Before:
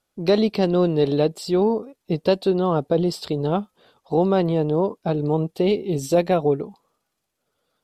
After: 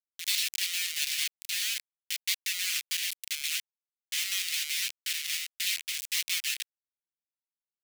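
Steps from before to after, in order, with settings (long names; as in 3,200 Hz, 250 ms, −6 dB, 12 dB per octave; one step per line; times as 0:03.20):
full-wave rectification
bit reduction 4 bits
Butterworth high-pass 2,200 Hz 36 dB per octave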